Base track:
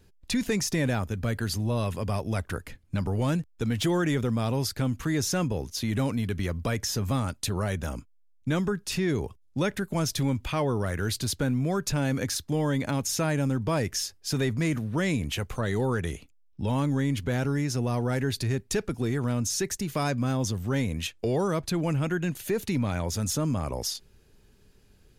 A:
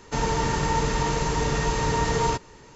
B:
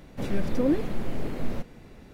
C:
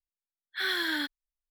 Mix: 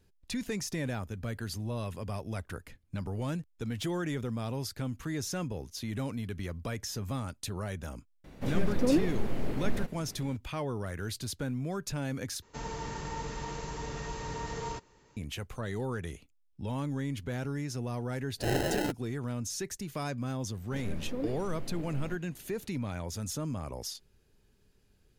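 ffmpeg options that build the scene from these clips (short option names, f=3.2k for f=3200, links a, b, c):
-filter_complex "[2:a]asplit=2[a][b];[0:a]volume=-8dB[c];[3:a]acrusher=samples=38:mix=1:aa=0.000001[d];[c]asplit=2[e][f];[e]atrim=end=12.424[g];[1:a]atrim=end=2.75,asetpts=PTS-STARTPTS,volume=-14dB[h];[f]atrim=start=15.166[i];[a]atrim=end=2.13,asetpts=PTS-STARTPTS,volume=-2dB,afade=t=in:d=0.004:c=hsin,afade=t=out:st=2.126:d=0.004:c=hsin,adelay=8240[j];[d]atrim=end=1.5,asetpts=PTS-STARTPTS,volume=-0.5dB,afade=t=in:d=0.004:c=hsin,afade=t=out:st=1.496:d=0.004:c=hsin,adelay=17850[k];[b]atrim=end=2.13,asetpts=PTS-STARTPTS,volume=-11.5dB,afade=t=in:d=0.004:c=hsin,afade=t=out:st=2.126:d=0.004:c=hsin,adelay=20540[l];[g][h]acrossfade=d=0.004:c1=hsin:c2=hsin[m];[m][i]acrossfade=d=0.004:c1=hsin:c2=hsin[n];[n][j][k][l]amix=inputs=4:normalize=0"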